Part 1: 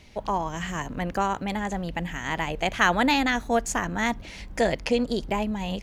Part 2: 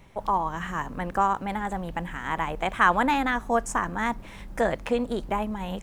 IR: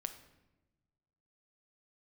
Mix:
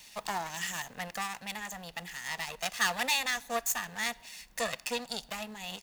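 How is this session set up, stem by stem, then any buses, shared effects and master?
-3.5 dB, 0.00 s, send -16.5 dB, comb filter that takes the minimum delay 1.1 ms; auto duck -10 dB, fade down 1.45 s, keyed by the second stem
-15.0 dB, 1.6 ms, no send, reverb removal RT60 1.6 s; tilt EQ -3 dB/octave; comb 4.2 ms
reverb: on, RT60 1.1 s, pre-delay 6 ms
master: tilt EQ +4.5 dB/octave

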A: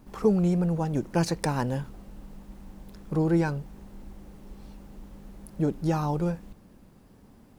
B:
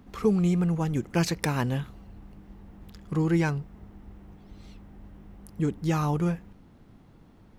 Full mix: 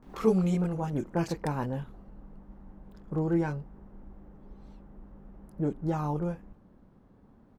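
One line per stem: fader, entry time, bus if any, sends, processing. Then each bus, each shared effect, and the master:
-4.0 dB, 0.00 s, no send, low-pass 1.6 kHz 24 dB/octave
+1.5 dB, 26 ms, polarity flipped, no send, high-pass 250 Hz; auto duck -16 dB, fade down 1.50 s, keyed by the first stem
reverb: none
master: none

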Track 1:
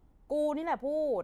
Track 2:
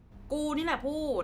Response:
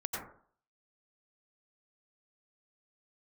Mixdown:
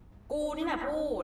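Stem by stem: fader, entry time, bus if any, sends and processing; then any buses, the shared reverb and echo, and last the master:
+2.5 dB, 0.00 s, no send, compression, threshold -36 dBFS, peak gain reduction 9.5 dB
0.0 dB, 4.2 ms, send -9.5 dB, auto duck -11 dB, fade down 0.20 s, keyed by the first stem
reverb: on, RT60 0.50 s, pre-delay 82 ms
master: none

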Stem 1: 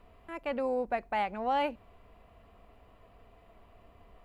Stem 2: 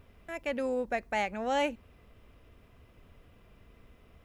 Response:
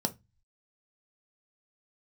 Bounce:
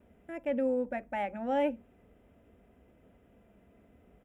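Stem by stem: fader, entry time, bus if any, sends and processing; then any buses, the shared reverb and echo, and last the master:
-3.0 dB, 0.00 s, no send, inverse Chebyshev band-stop 1.3–3.1 kHz, stop band 60 dB
-9.0 dB, 3.9 ms, send -7 dB, Savitzky-Golay filter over 25 samples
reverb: on, RT60 0.20 s, pre-delay 3 ms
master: high-pass 57 Hz

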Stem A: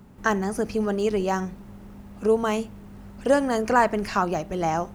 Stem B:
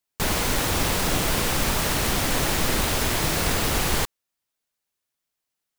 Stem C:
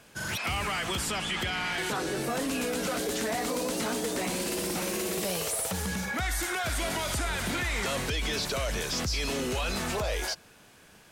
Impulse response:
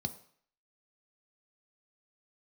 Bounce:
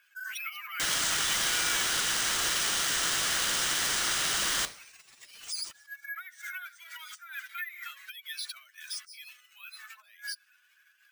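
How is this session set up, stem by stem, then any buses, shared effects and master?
-11.0 dB, 0.00 s, send -5 dB, expander on every frequency bin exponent 3; peak limiter -20.5 dBFS, peak gain reduction 11 dB
+0.5 dB, 0.60 s, send -3 dB, none
-2.5 dB, 0.00 s, send -23.5 dB, spectral contrast enhancement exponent 2.1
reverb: on, RT60 0.55 s, pre-delay 3 ms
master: steep high-pass 1.4 kHz 36 dB/octave; sample-and-hold 3×

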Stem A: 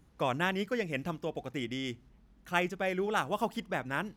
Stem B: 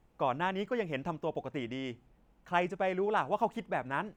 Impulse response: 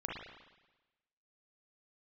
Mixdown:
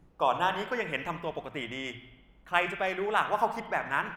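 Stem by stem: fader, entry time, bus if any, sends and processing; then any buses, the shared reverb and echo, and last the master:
0.0 dB, 0.00 s, send -6 dB, auto duck -11 dB, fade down 0.25 s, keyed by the second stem
+1.5 dB, 0.8 ms, polarity flipped, send -9.5 dB, hum notches 60/120/180 Hz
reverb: on, RT60 1.1 s, pre-delay 35 ms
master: tape noise reduction on one side only decoder only

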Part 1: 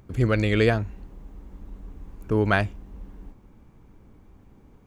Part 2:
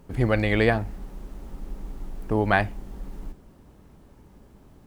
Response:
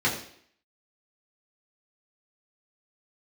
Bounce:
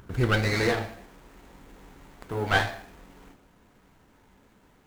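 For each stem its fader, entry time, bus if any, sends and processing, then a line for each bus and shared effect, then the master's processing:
+1.0 dB, 0.00 s, no send, peaking EQ 1.5 kHz +15 dB 0.54 oct; auto duck -13 dB, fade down 0.70 s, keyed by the second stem
-7.5 dB, 0.00 s, polarity flipped, send -9 dB, tilt EQ +4.5 dB/octave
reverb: on, RT60 0.60 s, pre-delay 3 ms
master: sliding maximum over 9 samples

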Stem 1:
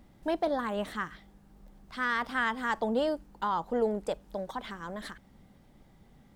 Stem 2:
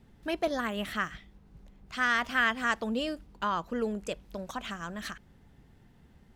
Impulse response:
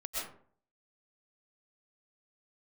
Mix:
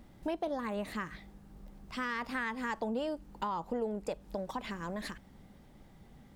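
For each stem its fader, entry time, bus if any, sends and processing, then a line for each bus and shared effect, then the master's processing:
+1.5 dB, 0.00 s, no send, none
-9.0 dB, 0.00 s, no send, none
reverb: none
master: compression 3:1, threshold -34 dBFS, peak gain reduction 10 dB

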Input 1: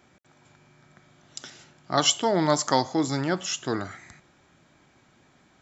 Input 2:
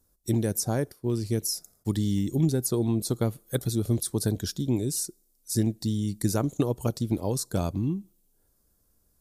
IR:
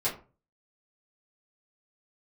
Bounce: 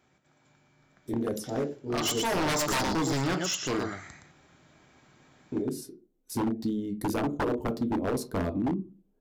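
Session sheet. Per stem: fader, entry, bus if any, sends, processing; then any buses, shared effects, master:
1.95 s -9.5 dB -> 2.39 s -2 dB, 0.00 s, send -14 dB, echo send -5.5 dB, none
-5.5 dB, 0.80 s, muted 2.93–5.52 s, send -10 dB, no echo send, local Wiener filter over 9 samples; graphic EQ 125/250/500/8000 Hz -8/+8/+5/-7 dB; auto duck -15 dB, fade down 1.70 s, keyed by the first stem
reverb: on, RT60 0.35 s, pre-delay 4 ms
echo: delay 118 ms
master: wavefolder -22 dBFS

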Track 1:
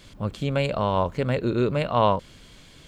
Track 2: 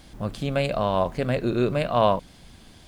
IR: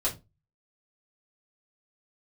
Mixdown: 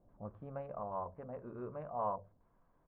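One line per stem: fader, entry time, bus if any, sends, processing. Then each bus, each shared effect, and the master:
-7.5 dB, 0.00 s, send -20.5 dB, local Wiener filter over 25 samples; auto duck -8 dB, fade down 0.90 s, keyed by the second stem
+1.5 dB, 0.8 ms, no send, steep high-pass 1 kHz 72 dB/octave; trance gate ".x.xxxxxxx.xx" 181 bpm -12 dB; treble shelf 4.6 kHz -6.5 dB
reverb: on, RT60 0.25 s, pre-delay 3 ms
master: four-pole ladder low-pass 850 Hz, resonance 60%

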